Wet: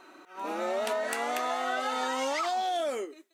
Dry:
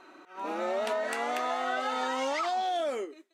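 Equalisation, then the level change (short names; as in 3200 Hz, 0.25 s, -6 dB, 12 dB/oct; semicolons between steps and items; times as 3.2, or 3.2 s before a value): high shelf 8200 Hz +11.5 dB; 0.0 dB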